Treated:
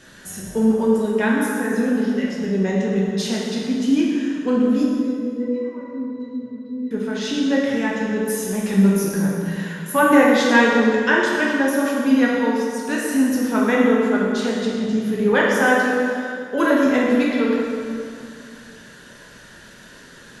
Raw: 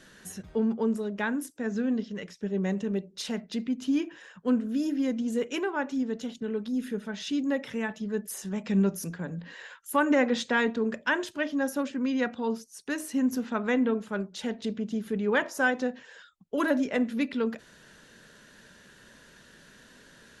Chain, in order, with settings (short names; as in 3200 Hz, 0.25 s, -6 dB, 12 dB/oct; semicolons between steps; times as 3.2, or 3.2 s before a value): 4.83–6.91 octave resonator B, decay 0.19 s; plate-style reverb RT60 2.4 s, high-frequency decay 0.7×, DRR -4.5 dB; gain +5 dB